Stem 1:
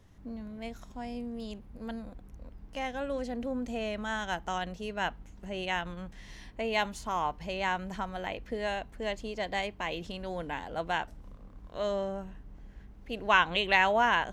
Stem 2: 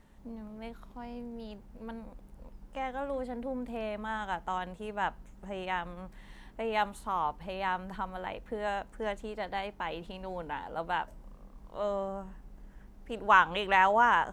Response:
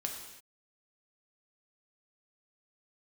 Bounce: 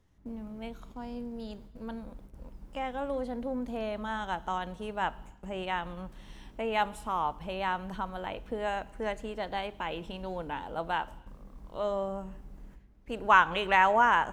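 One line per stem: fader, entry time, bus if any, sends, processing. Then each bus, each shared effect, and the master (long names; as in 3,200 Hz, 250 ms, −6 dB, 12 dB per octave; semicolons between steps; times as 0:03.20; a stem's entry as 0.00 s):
−13.0 dB, 0.00 s, send −6 dB, downward compressor, threshold −36 dBFS, peak gain reduction 17 dB
0.0 dB, 0.00 s, send −15.5 dB, noise gate with hold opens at −41 dBFS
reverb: on, pre-delay 3 ms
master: no processing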